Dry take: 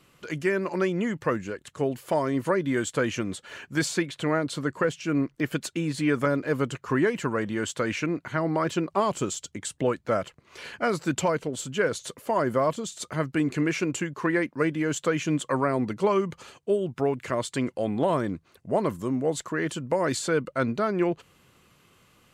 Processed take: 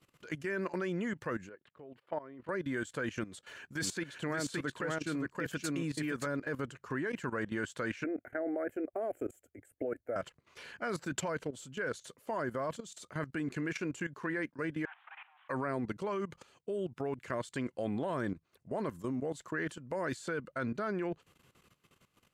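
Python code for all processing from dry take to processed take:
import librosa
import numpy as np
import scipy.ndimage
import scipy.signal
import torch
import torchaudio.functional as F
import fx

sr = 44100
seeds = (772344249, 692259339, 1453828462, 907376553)

y = fx.chain(x, sr, fx.highpass(hz=310.0, slope=6),
    fx.level_steps(step_db=12),
    fx.air_absorb(metres=420.0), at=(1.49, 2.49))
y = fx.chain(y, sr, fx.high_shelf(hz=4400.0, db=3.5),
    fx.echo_single(ms=571, db=-4.0), at=(3.25, 6.27))
y = fx.chain(y, sr, fx.curve_eq(hz=(110.0, 170.0, 240.0, 710.0, 1000.0, 1500.0, 2200.0, 3600.0, 5500.0, 13000.0), db=(0, -26, 3, 9, -16, 0, -1, -27, -22, 11)),
    fx.level_steps(step_db=13), at=(8.04, 10.16))
y = fx.chain(y, sr, fx.delta_mod(bps=16000, step_db=-43.0),
    fx.steep_highpass(hz=750.0, slope=72), at=(14.85, 15.49))
y = fx.dynamic_eq(y, sr, hz=1600.0, q=4.0, threshold_db=-47.0, ratio=4.0, max_db=7)
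y = fx.level_steps(y, sr, step_db=15)
y = F.gain(torch.from_numpy(y), -4.5).numpy()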